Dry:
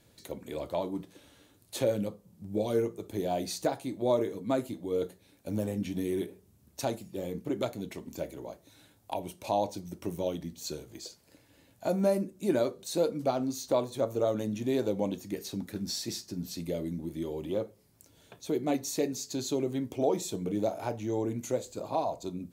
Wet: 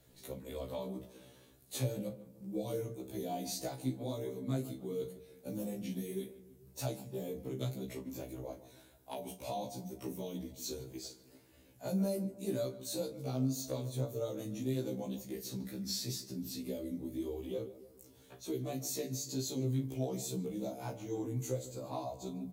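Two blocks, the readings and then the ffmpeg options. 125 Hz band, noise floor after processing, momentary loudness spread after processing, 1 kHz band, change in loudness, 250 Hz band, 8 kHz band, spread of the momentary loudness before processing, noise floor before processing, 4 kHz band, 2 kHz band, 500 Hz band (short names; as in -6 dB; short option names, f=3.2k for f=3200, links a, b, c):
0.0 dB, -62 dBFS, 11 LU, -10.5 dB, -7.0 dB, -5.5 dB, -2.5 dB, 11 LU, -64 dBFS, -4.0 dB, -9.0 dB, -9.5 dB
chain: -filter_complex "[0:a]lowshelf=f=400:g=6,acrossover=split=180|3000[a][b][c];[b]acompressor=threshold=-36dB:ratio=3[d];[a][d][c]amix=inputs=3:normalize=0,asplit=2[e][f];[f]adelay=149,lowpass=f=1.9k:p=1,volume=-14dB,asplit=2[g][h];[h]adelay=149,lowpass=f=1.9k:p=1,volume=0.51,asplit=2[i][j];[j]adelay=149,lowpass=f=1.9k:p=1,volume=0.51,asplit=2[k][l];[l]adelay=149,lowpass=f=1.9k:p=1,volume=0.51,asplit=2[m][n];[n]adelay=149,lowpass=f=1.9k:p=1,volume=0.51[o];[e][g][i][k][m][o]amix=inputs=6:normalize=0,flanger=delay=1.4:depth=7.2:regen=41:speed=1.9:shape=sinusoidal,highshelf=f=12k:g=10,bandreject=f=50:t=h:w=6,bandreject=f=100:t=h:w=6,bandreject=f=150:t=h:w=6,bandreject=f=200:t=h:w=6,asplit=2[p][q];[q]adelay=38,volume=-12dB[r];[p][r]amix=inputs=2:normalize=0,afftfilt=real='re*1.73*eq(mod(b,3),0)':imag='im*1.73*eq(mod(b,3),0)':win_size=2048:overlap=0.75,volume=1.5dB"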